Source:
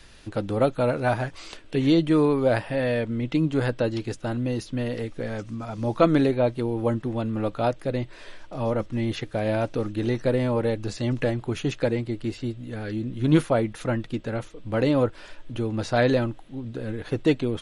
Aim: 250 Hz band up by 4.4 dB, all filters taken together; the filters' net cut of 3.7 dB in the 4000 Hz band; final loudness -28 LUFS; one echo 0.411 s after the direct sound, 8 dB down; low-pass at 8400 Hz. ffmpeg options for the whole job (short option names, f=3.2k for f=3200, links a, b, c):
-af "lowpass=8.4k,equalizer=f=250:t=o:g=5.5,equalizer=f=4k:t=o:g=-4.5,aecho=1:1:411:0.398,volume=-5.5dB"